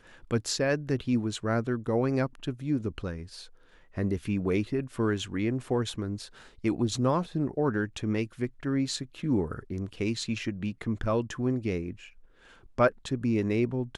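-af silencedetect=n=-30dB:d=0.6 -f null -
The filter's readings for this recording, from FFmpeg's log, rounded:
silence_start: 3.16
silence_end: 3.97 | silence_duration: 0.81
silence_start: 11.91
silence_end: 12.78 | silence_duration: 0.88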